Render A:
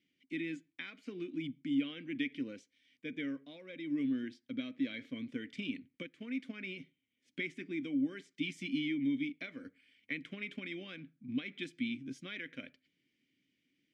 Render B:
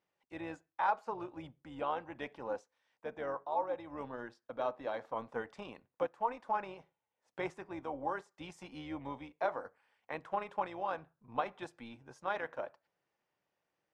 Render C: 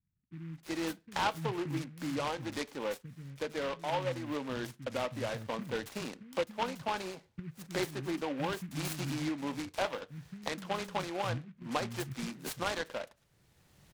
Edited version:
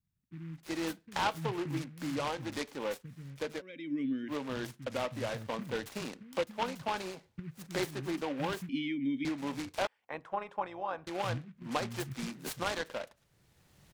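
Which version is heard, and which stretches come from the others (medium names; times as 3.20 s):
C
3.59–4.30 s: from A, crossfade 0.06 s
8.69–9.25 s: from A
9.87–11.07 s: from B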